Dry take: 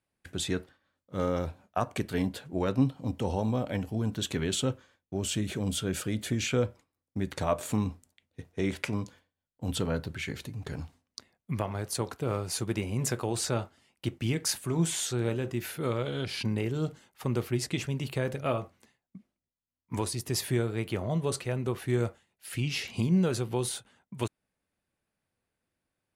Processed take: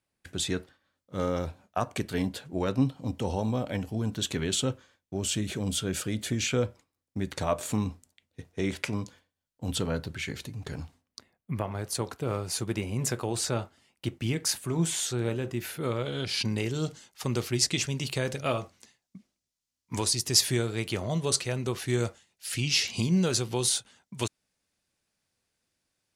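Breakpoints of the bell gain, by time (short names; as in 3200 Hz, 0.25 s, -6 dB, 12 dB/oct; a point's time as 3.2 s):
bell 5800 Hz 1.8 oct
10.72 s +4 dB
11.51 s -7.5 dB
11.87 s +2 dB
15.94 s +2 dB
16.62 s +13 dB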